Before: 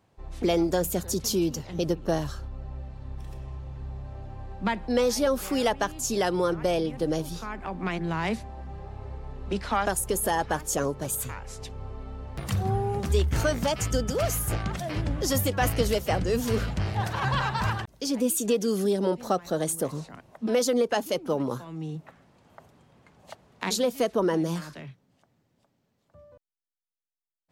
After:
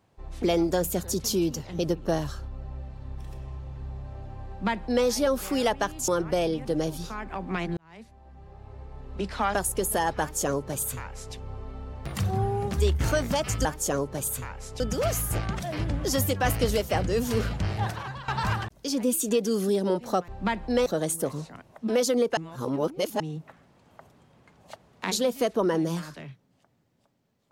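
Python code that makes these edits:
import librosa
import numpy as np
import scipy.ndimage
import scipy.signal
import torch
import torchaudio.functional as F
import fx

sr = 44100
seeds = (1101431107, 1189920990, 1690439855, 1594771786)

y = fx.edit(x, sr, fx.duplicate(start_s=4.48, length_s=0.58, to_s=19.45),
    fx.cut(start_s=6.08, length_s=0.32),
    fx.fade_in_span(start_s=8.09, length_s=1.77),
    fx.duplicate(start_s=10.52, length_s=1.15, to_s=13.97),
    fx.fade_out_to(start_s=17.02, length_s=0.43, curve='qua', floor_db=-15.5),
    fx.reverse_span(start_s=20.96, length_s=0.83), tone=tone)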